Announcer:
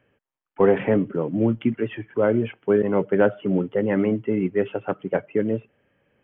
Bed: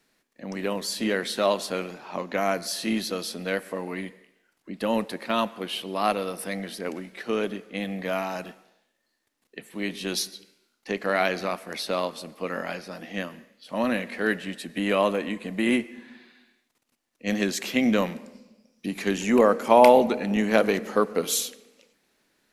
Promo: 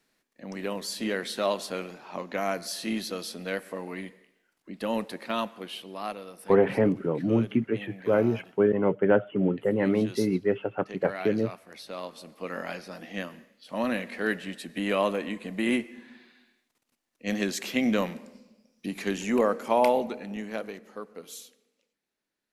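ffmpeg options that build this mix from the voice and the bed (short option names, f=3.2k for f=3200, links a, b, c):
-filter_complex "[0:a]adelay=5900,volume=-3dB[a];[1:a]volume=5.5dB,afade=t=out:st=5.27:d=0.94:silence=0.375837,afade=t=in:st=11.87:d=0.8:silence=0.334965,afade=t=out:st=18.89:d=1.91:silence=0.188365[b];[a][b]amix=inputs=2:normalize=0"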